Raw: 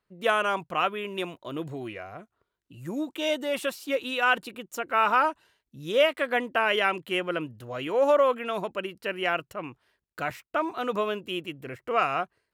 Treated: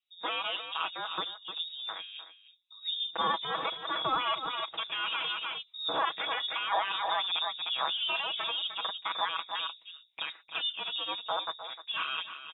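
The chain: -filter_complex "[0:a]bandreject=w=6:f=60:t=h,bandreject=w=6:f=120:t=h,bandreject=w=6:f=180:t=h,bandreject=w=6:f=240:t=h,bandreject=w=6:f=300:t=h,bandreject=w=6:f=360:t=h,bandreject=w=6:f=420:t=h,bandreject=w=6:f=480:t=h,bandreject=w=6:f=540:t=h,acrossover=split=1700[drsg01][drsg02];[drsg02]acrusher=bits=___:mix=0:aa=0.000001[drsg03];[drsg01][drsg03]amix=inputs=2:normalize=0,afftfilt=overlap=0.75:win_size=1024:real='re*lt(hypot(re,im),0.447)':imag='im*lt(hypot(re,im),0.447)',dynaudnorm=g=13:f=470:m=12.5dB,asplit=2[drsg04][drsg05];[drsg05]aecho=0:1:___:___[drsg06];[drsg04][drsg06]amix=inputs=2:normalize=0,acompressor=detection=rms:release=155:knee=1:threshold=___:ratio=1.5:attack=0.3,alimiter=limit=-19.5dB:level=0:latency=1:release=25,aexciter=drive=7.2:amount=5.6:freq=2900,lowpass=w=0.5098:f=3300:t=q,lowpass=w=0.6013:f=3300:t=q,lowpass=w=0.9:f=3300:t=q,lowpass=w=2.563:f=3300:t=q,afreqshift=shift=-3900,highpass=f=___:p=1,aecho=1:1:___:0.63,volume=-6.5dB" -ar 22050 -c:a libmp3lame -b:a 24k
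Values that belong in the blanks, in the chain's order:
5, 304, 0.211, -24dB, 300, 6.2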